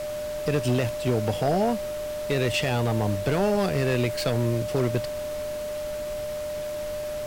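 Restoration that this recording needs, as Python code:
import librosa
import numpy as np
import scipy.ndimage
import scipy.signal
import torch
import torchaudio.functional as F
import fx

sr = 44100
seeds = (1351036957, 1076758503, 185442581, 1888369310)

y = fx.fix_declip(x, sr, threshold_db=-17.0)
y = fx.notch(y, sr, hz=600.0, q=30.0)
y = fx.noise_reduce(y, sr, print_start_s=5.57, print_end_s=6.07, reduce_db=30.0)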